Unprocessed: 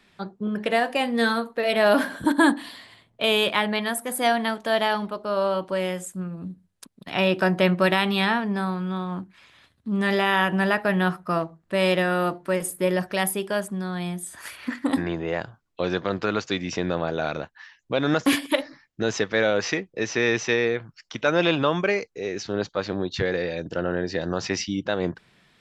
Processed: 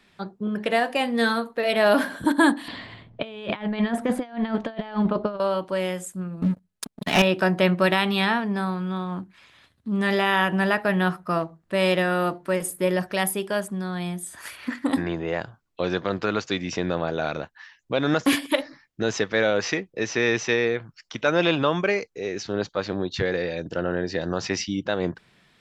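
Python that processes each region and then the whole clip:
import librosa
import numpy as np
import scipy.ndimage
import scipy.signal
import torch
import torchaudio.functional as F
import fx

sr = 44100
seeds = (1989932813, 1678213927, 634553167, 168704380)

y = fx.chain(x, sr, fx.lowpass(hz=3400.0, slope=12),
    fx.over_compress(threshold_db=-30.0, ratio=-0.5),
    fx.low_shelf(hz=320.0, db=10.5), at=(2.68, 5.4))
y = fx.chain(y, sr, fx.comb(ms=4.7, depth=0.35),
    fx.leveller(passes=3), at=(6.42, 7.22))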